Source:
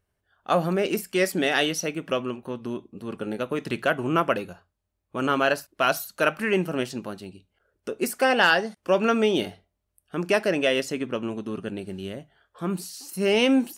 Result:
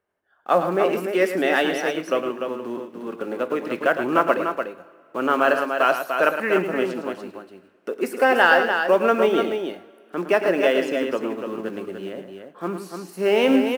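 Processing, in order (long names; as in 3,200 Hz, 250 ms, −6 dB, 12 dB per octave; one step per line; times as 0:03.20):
one scale factor per block 5 bits
three-way crossover with the lows and the highs turned down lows −22 dB, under 240 Hz, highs −13 dB, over 2,300 Hz
on a send: multi-tap delay 110/294 ms −9.5/−6.5 dB
on the sum: coupled-rooms reverb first 0.43 s, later 2.6 s, from −14 dB, DRR 14 dB
level +4 dB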